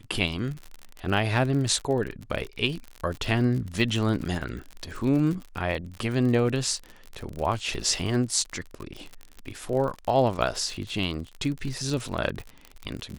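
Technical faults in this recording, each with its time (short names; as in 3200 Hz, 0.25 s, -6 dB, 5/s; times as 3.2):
crackle 50/s -31 dBFS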